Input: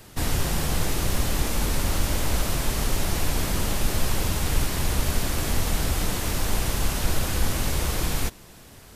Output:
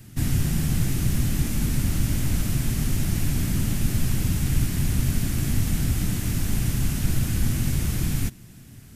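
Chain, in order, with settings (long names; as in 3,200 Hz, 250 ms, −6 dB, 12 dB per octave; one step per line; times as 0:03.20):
graphic EQ with 10 bands 125 Hz +10 dB, 250 Hz +6 dB, 500 Hz −10 dB, 1,000 Hz −9 dB, 4,000 Hz −5 dB
level −1.5 dB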